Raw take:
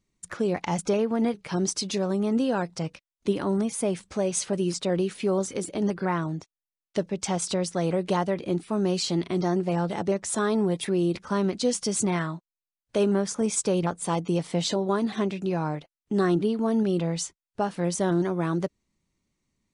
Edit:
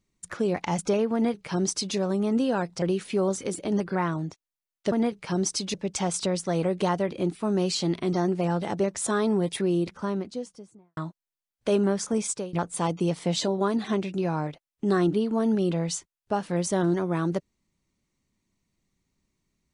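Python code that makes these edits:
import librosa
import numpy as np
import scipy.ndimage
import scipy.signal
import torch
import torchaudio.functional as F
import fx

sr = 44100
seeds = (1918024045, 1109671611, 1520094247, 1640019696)

y = fx.studio_fade_out(x, sr, start_s=10.83, length_s=1.42)
y = fx.edit(y, sr, fx.duplicate(start_s=1.14, length_s=0.82, to_s=7.02),
    fx.cut(start_s=2.82, length_s=2.1),
    fx.fade_out_to(start_s=13.32, length_s=0.49, curve='qsin', floor_db=-23.5), tone=tone)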